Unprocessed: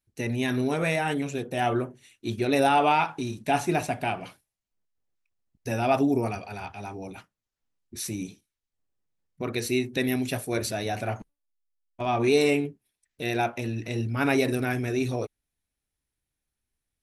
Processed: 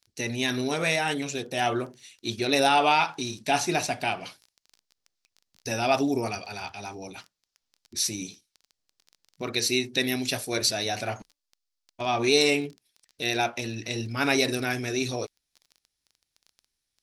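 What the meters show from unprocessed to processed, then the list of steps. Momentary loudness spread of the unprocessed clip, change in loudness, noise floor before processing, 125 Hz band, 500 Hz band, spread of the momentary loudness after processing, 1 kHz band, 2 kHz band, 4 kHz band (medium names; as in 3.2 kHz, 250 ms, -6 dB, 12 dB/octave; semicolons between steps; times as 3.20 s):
15 LU, +0.5 dB, under -85 dBFS, -4.5 dB, -1.0 dB, 16 LU, 0.0 dB, +2.5 dB, +8.5 dB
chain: bass shelf 250 Hz -6 dB; crackle 14 per s -44 dBFS; peaking EQ 4.9 kHz +12.5 dB 1.2 oct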